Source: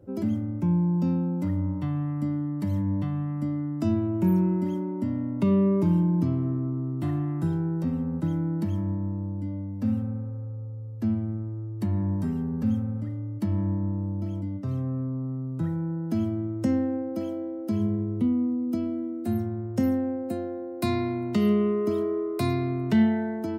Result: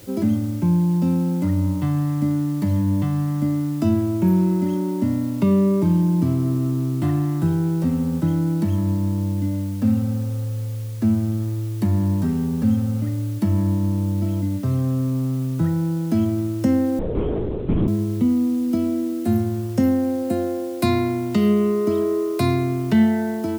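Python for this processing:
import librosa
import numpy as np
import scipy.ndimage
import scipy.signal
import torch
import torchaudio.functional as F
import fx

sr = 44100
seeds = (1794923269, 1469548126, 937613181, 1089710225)

p1 = fx.rider(x, sr, range_db=5, speed_s=0.5)
p2 = x + (p1 * librosa.db_to_amplitude(0.5))
p3 = fx.quant_dither(p2, sr, seeds[0], bits=8, dither='triangular')
y = fx.lpc_vocoder(p3, sr, seeds[1], excitation='whisper', order=8, at=(16.99, 17.88))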